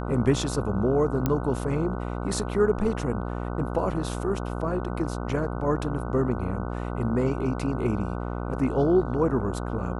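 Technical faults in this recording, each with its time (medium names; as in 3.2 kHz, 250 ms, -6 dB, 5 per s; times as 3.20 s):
buzz 60 Hz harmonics 25 -31 dBFS
1.26 s: pop -11 dBFS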